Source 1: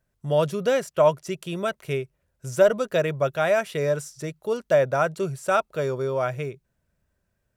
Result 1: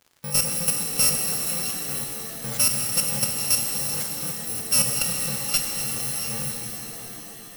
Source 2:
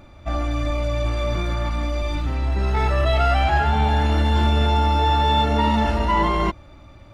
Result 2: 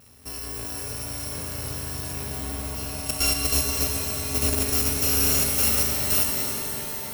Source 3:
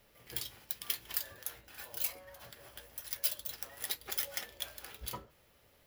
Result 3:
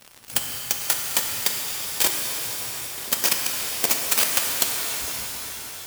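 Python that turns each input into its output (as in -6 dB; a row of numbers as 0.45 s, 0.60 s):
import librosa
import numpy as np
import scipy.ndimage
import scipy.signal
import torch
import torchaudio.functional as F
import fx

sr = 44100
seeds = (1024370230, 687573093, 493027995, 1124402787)

y = fx.bit_reversed(x, sr, seeds[0], block=128)
y = scipy.signal.sosfilt(scipy.signal.butter(2, 92.0, 'highpass', fs=sr, output='sos'), y)
y = fx.dynamic_eq(y, sr, hz=540.0, q=2.1, threshold_db=-44.0, ratio=4.0, max_db=5)
y = fx.level_steps(y, sr, step_db=19)
y = fx.dmg_crackle(y, sr, seeds[1], per_s=88.0, level_db=-47.0)
y = np.clip(10.0 ** (24.0 / 20.0) * y, -1.0, 1.0) / 10.0 ** (24.0 / 20.0)
y = fx.rev_shimmer(y, sr, seeds[2], rt60_s=3.9, semitones=7, shimmer_db=-2, drr_db=2.0)
y = y * 10.0 ** (-26 / 20.0) / np.sqrt(np.mean(np.square(y)))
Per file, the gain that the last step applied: +6.5 dB, +3.5 dB, +19.0 dB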